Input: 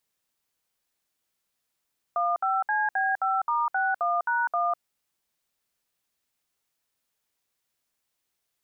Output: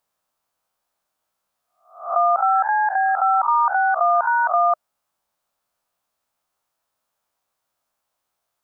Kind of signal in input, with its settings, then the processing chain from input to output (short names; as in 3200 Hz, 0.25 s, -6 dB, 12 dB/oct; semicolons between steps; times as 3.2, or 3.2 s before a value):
DTMF "15CB5*61#1", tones 0.201 s, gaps 63 ms, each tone -25 dBFS
spectral swells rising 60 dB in 0.46 s; EQ curve 430 Hz 0 dB, 620 Hz +9 dB, 1300 Hz +8 dB, 1900 Hz -2 dB